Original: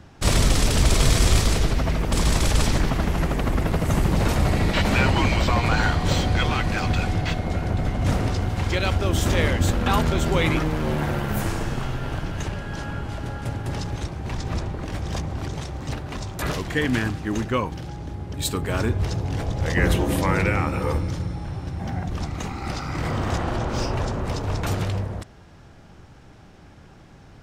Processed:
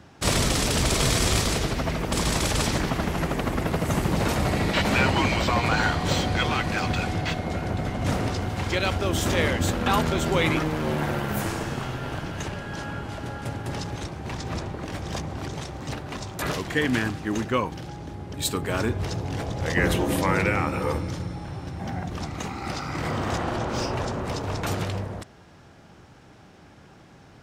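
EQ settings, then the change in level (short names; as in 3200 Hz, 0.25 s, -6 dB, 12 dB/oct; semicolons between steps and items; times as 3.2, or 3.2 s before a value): HPF 140 Hz 6 dB/oct; 0.0 dB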